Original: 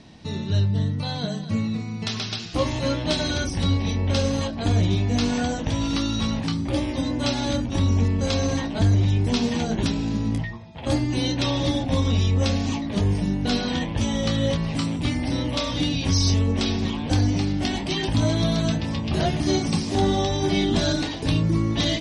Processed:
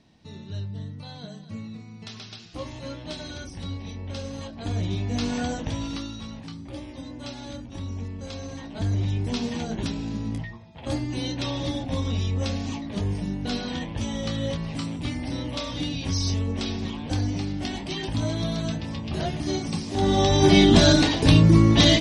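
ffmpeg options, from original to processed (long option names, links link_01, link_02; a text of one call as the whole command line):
ffmpeg -i in.wav -af "volume=16.5dB,afade=type=in:start_time=4.29:duration=1.24:silence=0.354813,afade=type=out:start_time=5.53:duration=0.66:silence=0.316228,afade=type=in:start_time=8.56:duration=0.45:silence=0.421697,afade=type=in:start_time=19.94:duration=0.53:silence=0.251189" out.wav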